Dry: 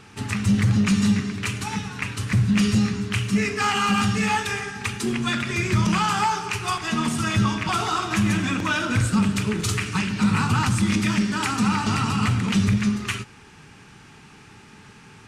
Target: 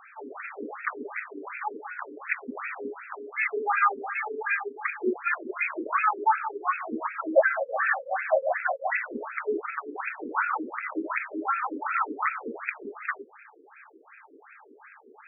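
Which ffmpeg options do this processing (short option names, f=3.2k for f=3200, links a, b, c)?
-filter_complex "[0:a]asettb=1/sr,asplit=3[a][b][c];[a]atrim=end=7.354[d];[b]atrim=start=7.35:end=9.04,asetpts=PTS-STARTPTS,afade=t=in:d=0.004:c=qsin,afade=t=out:st=1.686:d=0.004:c=qsin,afreqshift=440[e];[c]atrim=start=9.036[f];[d][e]acrossfade=d=0.004:c1=hsin:c2=qsin[g];[g][f]acrossfade=d=0.004:c1=qsin:c2=hsin,afftfilt=real='re*between(b*sr/1024,360*pow(1900/360,0.5+0.5*sin(2*PI*2.7*pts/sr))/1.41,360*pow(1900/360,0.5+0.5*sin(2*PI*2.7*pts/sr))*1.41)':imag='im*between(b*sr/1024,360*pow(1900/360,0.5+0.5*sin(2*PI*2.7*pts/sr))/1.41,360*pow(1900/360,0.5+0.5*sin(2*PI*2.7*pts/sr))*1.41)':win_size=1024:overlap=0.75,volume=4dB"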